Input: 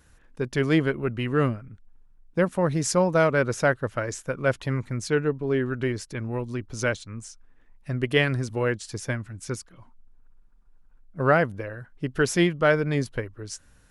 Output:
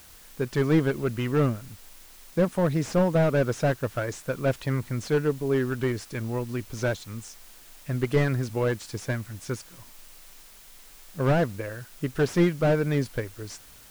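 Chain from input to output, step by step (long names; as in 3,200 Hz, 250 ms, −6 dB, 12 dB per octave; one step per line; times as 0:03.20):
background noise white −51 dBFS
slew-rate limiting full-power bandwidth 70 Hz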